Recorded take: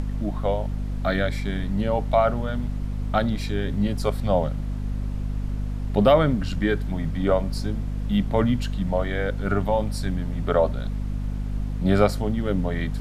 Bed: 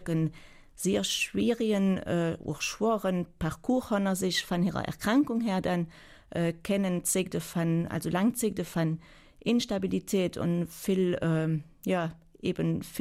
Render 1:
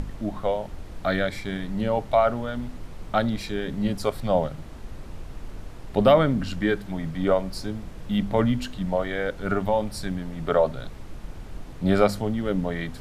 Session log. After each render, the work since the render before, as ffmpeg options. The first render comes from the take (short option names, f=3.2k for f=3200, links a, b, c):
-af "bandreject=f=50:t=h:w=4,bandreject=f=100:t=h:w=4,bandreject=f=150:t=h:w=4,bandreject=f=200:t=h:w=4,bandreject=f=250:t=h:w=4"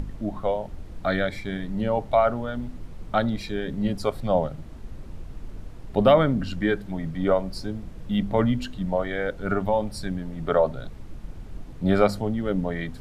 -af "afftdn=nr=6:nf=-40"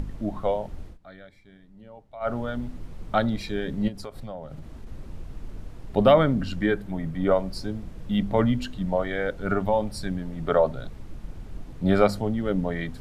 -filter_complex "[0:a]asettb=1/sr,asplit=3[a][b][c];[a]atrim=end=3.884[d];[b]atrim=start=3.88:end=4.87,asetpts=PTS-STARTPTS,afade=t=in:d=0.004:c=qsin,afade=t=out:st=0.986:d=0.004:c=qsin,acompressor=threshold=-33dB:ratio=6:attack=3.2:release=140:knee=1:detection=peak[e];[c]atrim=start=4.866[f];[d][e]acrossfade=d=0.004:c1=hsin:c2=qsin[g];[g][f]acrossfade=d=0.004:c1=qsin:c2=hsin,asettb=1/sr,asplit=3[h][i][j];[h]atrim=end=6.664[k];[i]atrim=start=6.66:end=7.31,asetpts=PTS-STARTPTS,afade=t=in:d=0.004:c=qsin,afade=t=out:st=0.646:d=0.004:c=qsin,equalizer=f=4.8k:w=0.86:g=-4[l];[j]atrim=start=7.306[m];[k][l]acrossfade=d=0.004:c1=hsin:c2=qsin[n];[n][m]acrossfade=d=0.004:c1=qsin:c2=hsin,asplit=3[o][p][q];[o]atrim=end=0.98,asetpts=PTS-STARTPTS,afade=t=out:st=0.8:d=0.18:c=qsin:silence=0.0794328[r];[p]atrim=start=0.98:end=2.2,asetpts=PTS-STARTPTS,volume=-22dB[s];[q]atrim=start=2.2,asetpts=PTS-STARTPTS,afade=t=in:d=0.18:c=qsin:silence=0.0794328[t];[r][s][t]concat=n=3:v=0:a=1"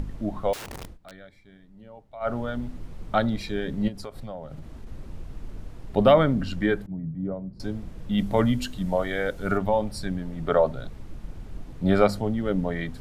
-filter_complex "[0:a]asettb=1/sr,asplit=3[a][b][c];[a]atrim=end=0.534[d];[b]atrim=start=0.53:end=1.16,asetpts=PTS-STARTPTS,afade=t=in:d=0.004:c=qsin,afade=t=out:st=0.626:d=0.004:c=qsin,aeval=exprs='(mod(47.3*val(0)+1,2)-1)/47.3':c=same[e];[c]atrim=start=1.156[f];[d][e]acrossfade=d=0.004:c1=hsin:c2=qsin[g];[g][f]acrossfade=d=0.004:c1=qsin:c2=hsin,asettb=1/sr,asplit=3[h][i][j];[h]atrim=end=6.864[k];[i]atrim=start=6.86:end=7.6,asetpts=PTS-STARTPTS,afade=t=in:d=0.004:c=qsin,afade=t=out:st=0.736:d=0.004:c=qsin,bandpass=f=150:t=q:w=1.4[l];[j]atrim=start=7.596[m];[k][l]acrossfade=d=0.004:c1=hsin:c2=qsin[n];[n][m]acrossfade=d=0.004:c1=qsin:c2=hsin,asettb=1/sr,asplit=3[o][p][q];[o]atrim=end=8.184[r];[p]atrim=start=8.18:end=9.58,asetpts=PTS-STARTPTS,afade=t=in:d=0.004:c=qsin,afade=t=out:st=1.396:d=0.004:c=qsin,highshelf=f=5.9k:g=12[s];[q]atrim=start=9.576[t];[r][s]acrossfade=d=0.004:c1=hsin:c2=qsin[u];[u][t]acrossfade=d=0.004:c1=qsin:c2=hsin"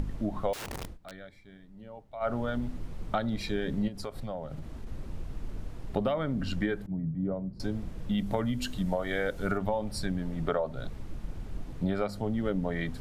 -af "acompressor=threshold=-25dB:ratio=16"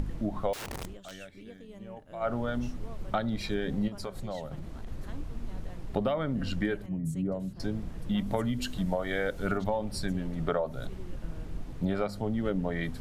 -filter_complex "[1:a]volume=-22dB[a];[0:a][a]amix=inputs=2:normalize=0"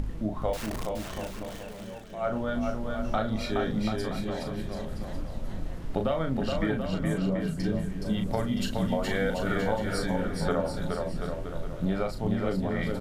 -filter_complex "[0:a]asplit=2[a][b];[b]adelay=37,volume=-6dB[c];[a][c]amix=inputs=2:normalize=0,aecho=1:1:420|735|971.2|1148|1281:0.631|0.398|0.251|0.158|0.1"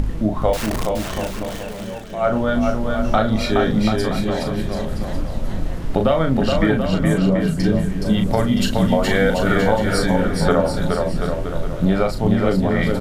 -af "volume=11dB,alimiter=limit=-3dB:level=0:latency=1"